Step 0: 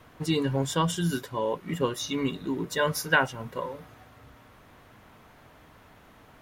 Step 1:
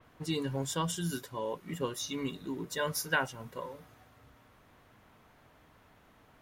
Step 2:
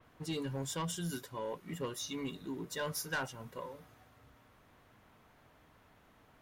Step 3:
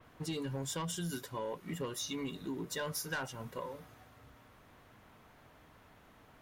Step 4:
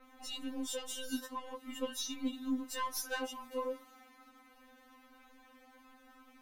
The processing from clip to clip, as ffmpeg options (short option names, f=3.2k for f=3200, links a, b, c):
-af "adynamicequalizer=threshold=0.00447:dfrequency=4300:dqfactor=0.7:tfrequency=4300:tqfactor=0.7:attack=5:release=100:ratio=0.375:range=3:mode=boostabove:tftype=highshelf,volume=-7.5dB"
-af "asoftclip=type=tanh:threshold=-27.5dB,volume=-2.5dB"
-af "acompressor=threshold=-39dB:ratio=4,volume=3.5dB"
-af "aeval=exprs='0.0376*(cos(1*acos(clip(val(0)/0.0376,-1,1)))-cos(1*PI/2))+0.00422*(cos(2*acos(clip(val(0)/0.0376,-1,1)))-cos(2*PI/2))':c=same,afftfilt=real='re*3.46*eq(mod(b,12),0)':imag='im*3.46*eq(mod(b,12),0)':win_size=2048:overlap=0.75,volume=2.5dB"